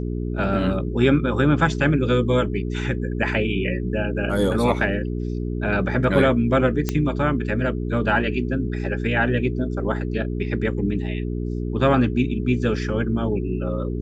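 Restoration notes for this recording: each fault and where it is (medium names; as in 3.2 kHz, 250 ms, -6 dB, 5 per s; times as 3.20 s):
hum 60 Hz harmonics 7 -26 dBFS
6.89 s: pop -8 dBFS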